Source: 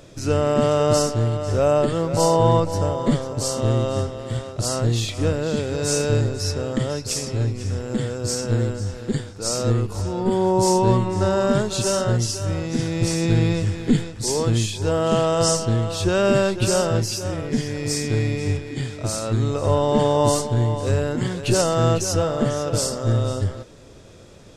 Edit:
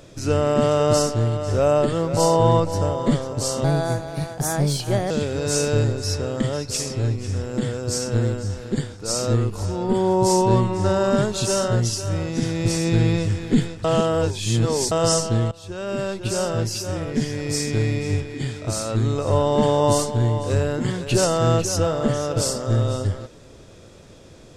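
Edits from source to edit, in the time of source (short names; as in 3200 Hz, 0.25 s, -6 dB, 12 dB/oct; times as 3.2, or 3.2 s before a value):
3.64–5.47 speed 125%
14.21–15.28 reverse
15.88–17.36 fade in, from -19.5 dB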